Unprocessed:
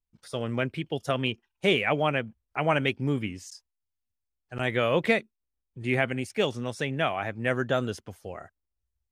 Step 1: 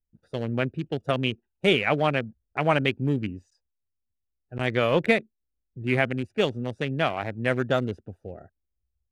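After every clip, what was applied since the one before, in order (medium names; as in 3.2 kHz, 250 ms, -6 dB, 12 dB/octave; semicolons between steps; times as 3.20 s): local Wiener filter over 41 samples; trim +3 dB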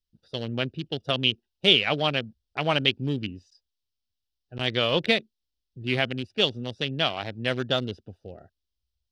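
high-order bell 4 kHz +13.5 dB 1.2 oct; trim -3 dB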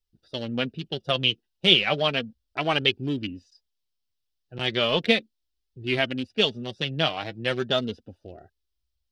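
flange 0.35 Hz, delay 2.2 ms, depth 4.5 ms, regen +36%; trim +4.5 dB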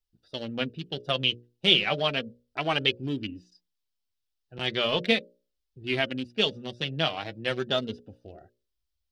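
hum notches 60/120/180/240/300/360/420/480/540/600 Hz; trim -2.5 dB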